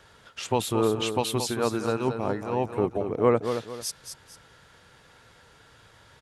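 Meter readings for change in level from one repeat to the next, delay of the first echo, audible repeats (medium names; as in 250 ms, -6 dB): -9.5 dB, 225 ms, 2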